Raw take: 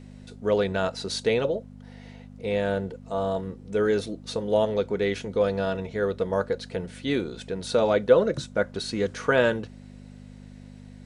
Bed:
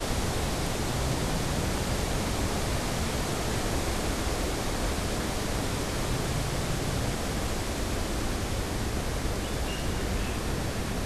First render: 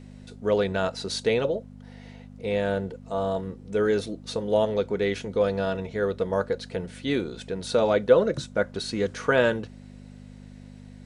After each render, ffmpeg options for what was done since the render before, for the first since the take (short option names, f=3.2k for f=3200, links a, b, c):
-af anull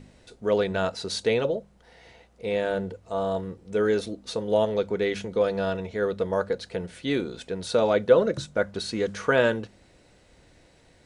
-af "bandreject=f=50:t=h:w=4,bandreject=f=100:t=h:w=4,bandreject=f=150:t=h:w=4,bandreject=f=200:t=h:w=4,bandreject=f=250:t=h:w=4"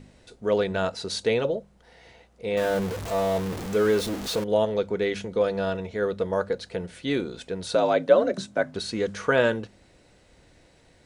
-filter_complex "[0:a]asettb=1/sr,asplit=3[a][b][c];[a]atrim=end=2.574[d];[b]atrim=start=2.57:end=4.44,asetpts=PTS-STARTPTS,afade=t=in:d=0.004:c=qsin,afade=t=out:st=1.866:d=0.004:c=qsin,aeval=exprs='val(0)+0.5*0.0376*sgn(val(0))':c=same[e];[c]atrim=start=4.436[f];[d][e]acrossfade=d=0.004:c1=hsin:c2=qsin[g];[g][f]acrossfade=d=0.004:c1=qsin:c2=hsin,asettb=1/sr,asplit=3[h][i][j];[h]atrim=end=7.754[k];[i]atrim=start=7.75:end=8.75,asetpts=PTS-STARTPTS,afade=t=in:d=0.004:c=qsin,afade=t=out:st=0.996:d=0.004:c=qsin,afreqshift=55[l];[j]atrim=start=8.746[m];[k][l]acrossfade=d=0.004:c1=hsin:c2=qsin[n];[n][m]acrossfade=d=0.004:c1=qsin:c2=hsin"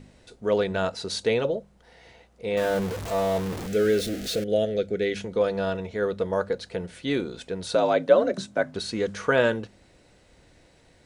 -filter_complex "[0:a]asettb=1/sr,asplit=3[a][b][c];[a]atrim=end=3.674[d];[b]atrim=start=3.67:end=5.17,asetpts=PTS-STARTPTS,afade=t=in:d=0.004:c=qsin,afade=t=out:st=1.496:d=0.004:c=qsin,asuperstop=centerf=990:order=4:qfactor=1.3[e];[c]atrim=start=5.166[f];[d][e]acrossfade=d=0.004:c1=hsin:c2=qsin[g];[g][f]acrossfade=d=0.004:c1=qsin:c2=hsin"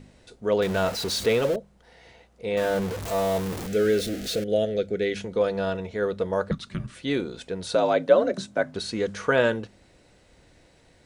-filter_complex "[0:a]asettb=1/sr,asplit=3[a][b][c];[a]atrim=end=0.624[d];[b]atrim=start=0.62:end=1.56,asetpts=PTS-STARTPTS,afade=t=in:d=0.004:c=qsin,afade=t=out:st=0.936:d=0.004:c=qsin,aeval=exprs='val(0)+0.5*0.0335*sgn(val(0))':c=same[e];[c]atrim=start=1.556[f];[d][e]acrossfade=d=0.004:c1=hsin:c2=qsin[g];[g][f]acrossfade=d=0.004:c1=qsin:c2=hsin,asettb=1/sr,asplit=3[h][i][j];[h]atrim=end=3.024[k];[i]atrim=start=3.02:end=3.67,asetpts=PTS-STARTPTS,afade=t=in:d=0.004:c=qsin,afade=t=out:st=0.646:d=0.004:c=qsin,highshelf=f=7k:g=6.5[l];[j]atrim=start=3.666[m];[k][l]acrossfade=d=0.004:c1=hsin:c2=qsin[n];[n][m]acrossfade=d=0.004:c1=qsin:c2=hsin,asettb=1/sr,asplit=3[o][p][q];[o]atrim=end=6.514[r];[p]atrim=start=6.51:end=6.95,asetpts=PTS-STARTPTS,afade=t=in:d=0.004:c=qsin,afade=t=out:st=0.436:d=0.004:c=qsin,afreqshift=-300[s];[q]atrim=start=6.946[t];[r][s]acrossfade=d=0.004:c1=hsin:c2=qsin[u];[u][t]acrossfade=d=0.004:c1=qsin:c2=hsin"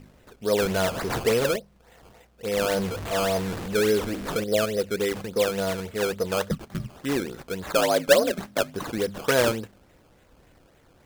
-af "acrusher=samples=16:mix=1:aa=0.000001:lfo=1:lforange=16:lforate=3.5"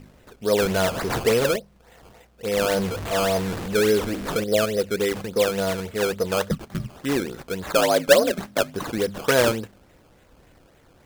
-af "volume=2.5dB"